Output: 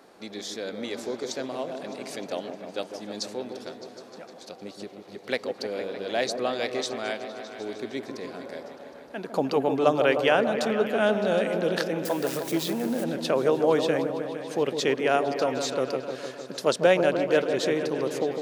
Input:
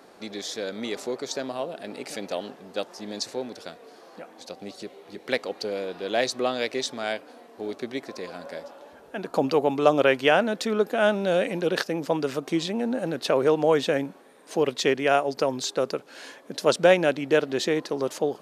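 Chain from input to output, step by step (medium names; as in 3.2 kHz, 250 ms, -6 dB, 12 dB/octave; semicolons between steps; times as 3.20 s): 12.05–13.04 s: zero-crossing glitches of -26 dBFS; delay with an opening low-pass 153 ms, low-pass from 750 Hz, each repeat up 1 oct, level -6 dB; trim -2.5 dB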